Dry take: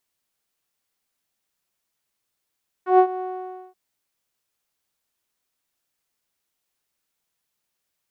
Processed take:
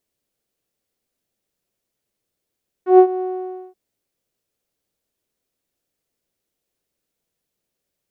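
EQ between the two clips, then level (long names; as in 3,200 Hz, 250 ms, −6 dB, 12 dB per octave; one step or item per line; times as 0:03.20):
low shelf with overshoot 700 Hz +8 dB, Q 1.5
−2.0 dB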